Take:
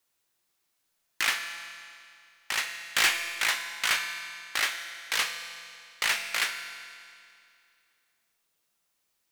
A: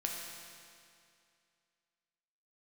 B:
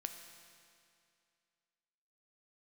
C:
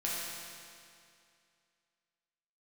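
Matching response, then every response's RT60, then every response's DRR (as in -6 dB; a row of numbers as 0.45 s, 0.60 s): B; 2.4 s, 2.4 s, 2.4 s; -1.0 dB, 5.5 dB, -7.0 dB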